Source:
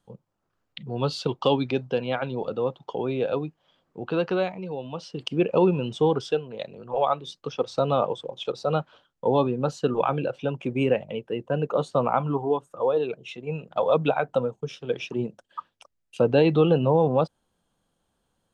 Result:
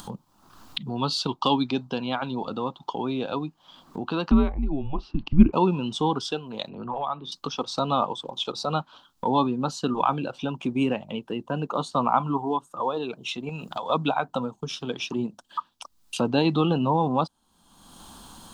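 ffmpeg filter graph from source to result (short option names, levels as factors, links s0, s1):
-filter_complex "[0:a]asettb=1/sr,asplit=3[s0][s1][s2];[s0]atrim=end=4.314[s3];[s1]atrim=start=4.31:end=5.53,asetpts=PTS-STARTPTS,afade=t=in:d=0.004:c=qsin,afade=t=out:st=1.216:d=0.004:c=qsin,lowpass=2100,afreqshift=-140,lowshelf=f=240:g=11.5[s4];[s2]atrim=start=5.526[s5];[s3][s4]acrossfade=d=0.004:c1=hsin:c2=qsin[s6];[s6][s5]acrossfade=d=0.004:c1=qsin:c2=hsin,asettb=1/sr,asplit=3[s7][s8][s9];[s7]atrim=end=6.694[s10];[s8]atrim=start=6.69:end=7.32,asetpts=PTS-STARTPTS,afade=t=in:d=0.004:c=qsin,afade=t=out:st=0.626:d=0.004:c=qsin,lowpass=2300,acrossover=split=180|3000[s11][s12][s13];[s12]acompressor=threshold=0.0447:ratio=3:attack=3.2:release=140:knee=2.83:detection=peak[s14];[s11][s14][s13]amix=inputs=3:normalize=0[s15];[s9]atrim=start=7.316[s16];[s10][s15]acrossfade=d=0.004:c1=hsin:c2=qsin[s17];[s17][s16]acrossfade=d=0.004:c1=qsin:c2=hsin,asettb=1/sr,asplit=3[s18][s19][s20];[s18]atrim=end=13.494[s21];[s19]atrim=start=13.49:end=13.9,asetpts=PTS-STARTPTS,afade=t=in:d=0.004:c=qsin,afade=t=out:st=0.406:d=0.004:c=qsin,highshelf=f=3400:g=10.5,acompressor=threshold=0.0178:ratio=2.5:attack=3.2:release=140:knee=1:detection=peak[s22];[s20]atrim=start=13.896[s23];[s21][s22]acrossfade=d=0.004:c1=hsin:c2=qsin[s24];[s24][s23]acrossfade=d=0.004:c1=qsin:c2=hsin,equalizer=f=125:t=o:w=1:g=-5,equalizer=f=250:t=o:w=1:g=6,equalizer=f=500:t=o:w=1:g=-11,equalizer=f=1000:t=o:w=1:g=9,equalizer=f=2000:t=o:w=1:g=-8,equalizer=f=4000:t=o:w=1:g=6,acompressor=mode=upward:threshold=0.0562:ratio=2.5,highshelf=f=6100:g=6.5"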